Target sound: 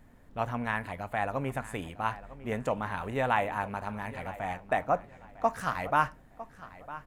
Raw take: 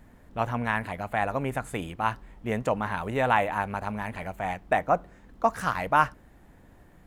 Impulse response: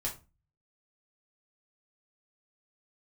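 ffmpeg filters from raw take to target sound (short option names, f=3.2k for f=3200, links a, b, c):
-filter_complex "[0:a]asplit=2[a][b];[b]adelay=954,lowpass=f=4.4k:p=1,volume=-16dB,asplit=2[c][d];[d]adelay=954,lowpass=f=4.4k:p=1,volume=0.25[e];[a][c][e]amix=inputs=3:normalize=0,asplit=2[f][g];[1:a]atrim=start_sample=2205[h];[g][h]afir=irnorm=-1:irlink=0,volume=-16dB[i];[f][i]amix=inputs=2:normalize=0,volume=-5dB"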